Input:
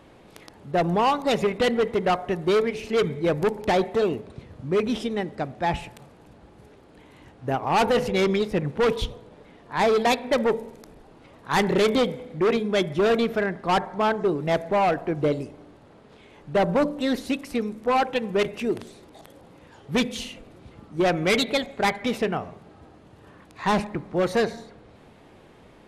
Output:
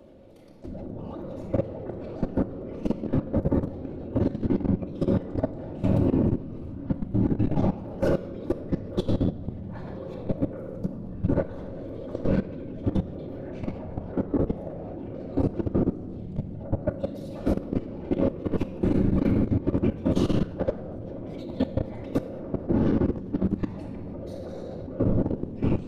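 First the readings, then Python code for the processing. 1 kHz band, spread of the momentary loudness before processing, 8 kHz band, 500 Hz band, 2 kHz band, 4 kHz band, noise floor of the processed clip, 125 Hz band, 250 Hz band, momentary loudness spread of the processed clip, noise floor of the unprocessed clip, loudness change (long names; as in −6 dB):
−15.5 dB, 10 LU, below −15 dB, −7.0 dB, −18.0 dB, below −15 dB, −38 dBFS, +6.0 dB, +1.5 dB, 13 LU, −52 dBFS, −4.5 dB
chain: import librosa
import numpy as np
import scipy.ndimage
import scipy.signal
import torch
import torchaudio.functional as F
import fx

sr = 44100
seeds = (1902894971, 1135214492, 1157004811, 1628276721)

p1 = fx.echo_pitch(x, sr, ms=81, semitones=-7, count=3, db_per_echo=-6.0)
p2 = fx.over_compress(p1, sr, threshold_db=-27.0, ratio=-0.5)
p3 = fx.graphic_eq(p2, sr, hz=(125, 250, 500, 1000, 2000, 8000), db=(9, 4, 11, -5, -6, -5))
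p4 = 10.0 ** (-14.0 / 20.0) * np.tanh(p3 / 10.0 ** (-14.0 / 20.0))
p5 = fx.whisperise(p4, sr, seeds[0])
p6 = p5 + fx.room_early_taps(p5, sr, ms=(11, 27), db=(-13.5, -14.5), dry=0)
p7 = fx.room_shoebox(p6, sr, seeds[1], volume_m3=2200.0, walls='mixed', distance_m=2.5)
p8 = fx.level_steps(p7, sr, step_db=15)
y = p8 * librosa.db_to_amplitude(-6.0)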